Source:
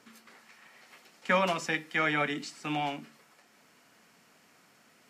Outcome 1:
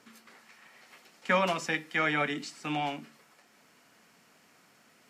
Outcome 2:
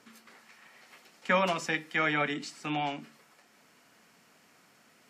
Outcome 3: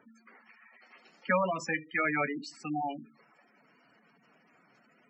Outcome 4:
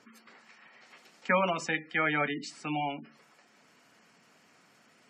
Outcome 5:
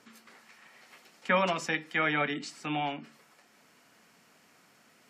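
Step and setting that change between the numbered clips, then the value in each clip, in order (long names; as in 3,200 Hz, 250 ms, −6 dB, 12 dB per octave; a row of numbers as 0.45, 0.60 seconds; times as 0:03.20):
gate on every frequency bin, under each frame's peak: −60, −45, −10, −20, −35 decibels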